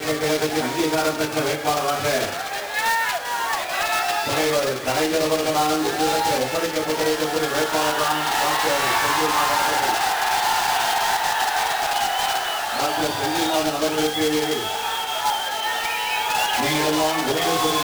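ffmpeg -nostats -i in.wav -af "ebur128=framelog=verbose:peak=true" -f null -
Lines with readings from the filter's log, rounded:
Integrated loudness:
  I:         -21.0 LUFS
  Threshold: -31.0 LUFS
Loudness range:
  LRA:         2.5 LU
  Threshold: -41.0 LUFS
  LRA low:   -22.0 LUFS
  LRA high:  -19.6 LUFS
True peak:
  Peak:       -8.5 dBFS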